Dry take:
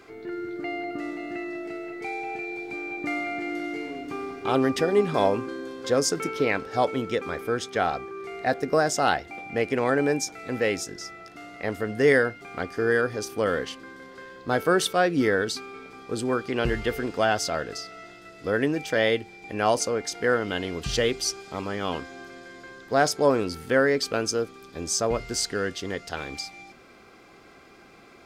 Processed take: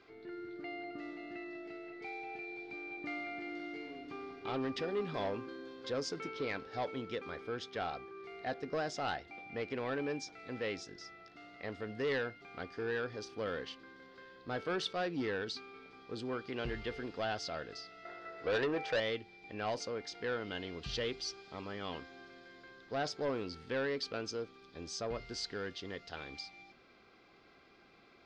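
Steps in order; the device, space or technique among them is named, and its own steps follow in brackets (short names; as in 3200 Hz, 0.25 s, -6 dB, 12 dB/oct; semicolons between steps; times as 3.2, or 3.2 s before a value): 18.05–19 band shelf 870 Hz +12.5 dB 2.7 oct; overdriven synthesiser ladder filter (soft clip -17 dBFS, distortion -9 dB; ladder low-pass 5300 Hz, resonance 35%); gain -4.5 dB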